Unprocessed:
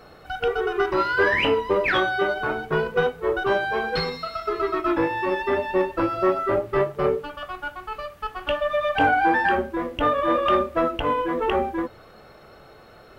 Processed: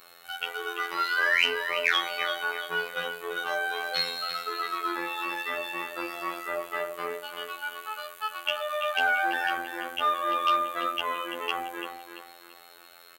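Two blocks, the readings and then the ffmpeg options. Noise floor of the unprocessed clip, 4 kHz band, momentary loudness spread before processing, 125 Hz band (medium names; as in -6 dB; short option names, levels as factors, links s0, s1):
-48 dBFS, +2.5 dB, 11 LU, -23.5 dB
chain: -filter_complex "[0:a]asplit=2[s0][s1];[s1]aecho=0:1:338|676|1014|1352:0.355|0.121|0.041|0.0139[s2];[s0][s2]amix=inputs=2:normalize=0,afftfilt=real='hypot(re,im)*cos(PI*b)':imag='0':win_size=2048:overlap=0.75,equalizer=f=5300:w=4.3:g=-9.5,acontrast=50,aderivative,volume=2.51"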